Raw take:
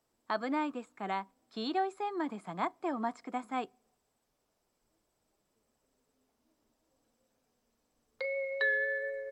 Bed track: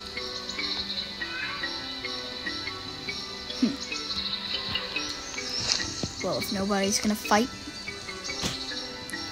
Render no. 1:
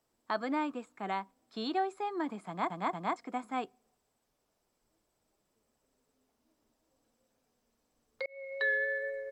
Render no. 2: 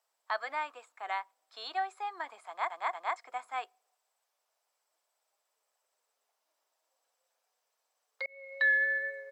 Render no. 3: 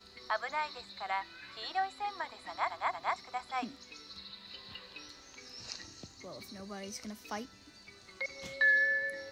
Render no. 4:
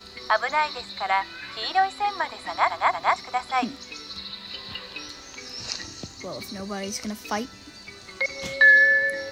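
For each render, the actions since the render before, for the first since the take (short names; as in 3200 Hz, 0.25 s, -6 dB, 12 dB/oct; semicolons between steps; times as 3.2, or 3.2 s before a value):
2.47 stutter in place 0.23 s, 3 plays; 8.26–8.7 fade in
HPF 630 Hz 24 dB/oct; dynamic EQ 1900 Hz, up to +6 dB, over -48 dBFS, Q 2.4
add bed track -18 dB
gain +12 dB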